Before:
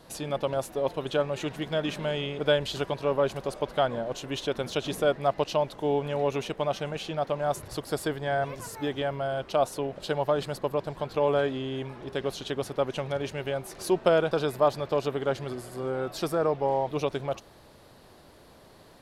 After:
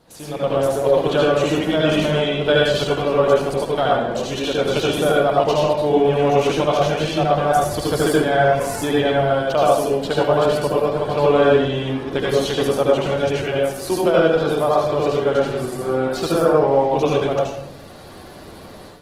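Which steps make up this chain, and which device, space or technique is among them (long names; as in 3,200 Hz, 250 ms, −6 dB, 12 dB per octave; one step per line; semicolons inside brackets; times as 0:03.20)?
speakerphone in a meeting room (convolution reverb RT60 0.70 s, pre-delay 68 ms, DRR −4 dB; automatic gain control gain up to 11 dB; level −2 dB; Opus 16 kbit/s 48,000 Hz)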